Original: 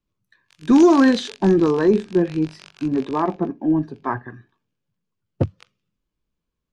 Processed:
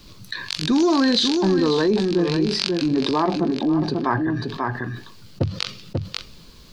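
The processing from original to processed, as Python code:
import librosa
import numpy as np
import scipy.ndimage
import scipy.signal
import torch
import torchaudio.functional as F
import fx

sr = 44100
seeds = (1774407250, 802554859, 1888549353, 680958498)

p1 = fx.peak_eq(x, sr, hz=4400.0, db=14.0, octaves=0.74)
p2 = p1 + fx.echo_single(p1, sr, ms=540, db=-11.5, dry=0)
p3 = fx.env_flatten(p2, sr, amount_pct=70)
y = p3 * 10.0 ** (-7.0 / 20.0)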